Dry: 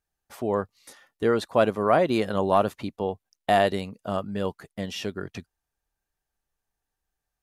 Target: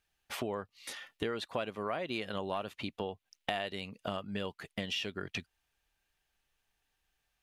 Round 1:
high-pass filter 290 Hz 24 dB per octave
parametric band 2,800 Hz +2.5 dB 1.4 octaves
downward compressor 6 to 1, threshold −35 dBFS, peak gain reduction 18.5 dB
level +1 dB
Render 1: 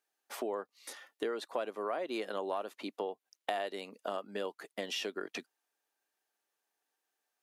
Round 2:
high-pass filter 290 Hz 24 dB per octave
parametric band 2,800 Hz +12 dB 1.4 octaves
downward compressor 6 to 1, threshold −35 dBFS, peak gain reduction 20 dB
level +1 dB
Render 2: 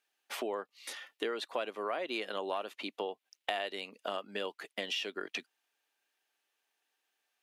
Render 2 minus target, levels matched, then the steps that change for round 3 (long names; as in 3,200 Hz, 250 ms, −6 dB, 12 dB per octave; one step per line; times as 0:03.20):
250 Hz band −4.5 dB
remove: high-pass filter 290 Hz 24 dB per octave